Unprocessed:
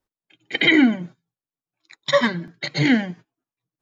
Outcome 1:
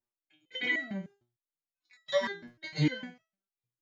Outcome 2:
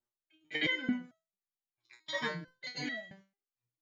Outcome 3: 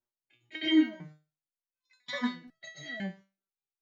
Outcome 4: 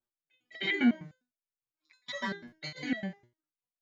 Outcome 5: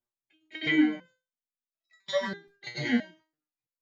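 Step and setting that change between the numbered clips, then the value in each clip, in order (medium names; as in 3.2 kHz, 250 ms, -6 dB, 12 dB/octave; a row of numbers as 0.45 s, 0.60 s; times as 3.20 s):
resonator arpeggio, rate: 6.6 Hz, 4.5 Hz, 2 Hz, 9.9 Hz, 3 Hz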